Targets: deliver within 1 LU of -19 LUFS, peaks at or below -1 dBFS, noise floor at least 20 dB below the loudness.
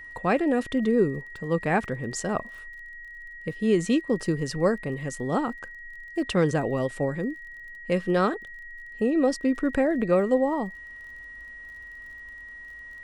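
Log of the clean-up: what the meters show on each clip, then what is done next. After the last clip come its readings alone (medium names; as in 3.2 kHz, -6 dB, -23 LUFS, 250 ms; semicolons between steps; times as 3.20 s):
tick rate 29 per s; steady tone 1.9 kHz; tone level -40 dBFS; loudness -26.0 LUFS; peak level -10.0 dBFS; loudness target -19.0 LUFS
-> de-click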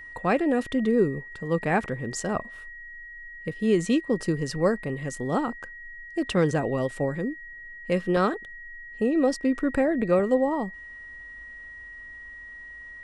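tick rate 0 per s; steady tone 1.9 kHz; tone level -40 dBFS
-> band-stop 1.9 kHz, Q 30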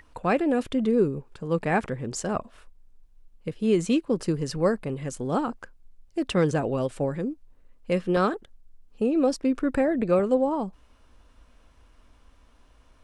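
steady tone not found; loudness -26.0 LUFS; peak level -10.5 dBFS; loudness target -19.0 LUFS
-> trim +7 dB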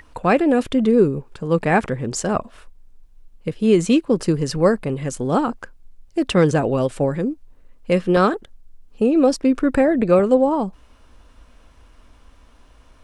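loudness -19.0 LUFS; peak level -3.5 dBFS; noise floor -50 dBFS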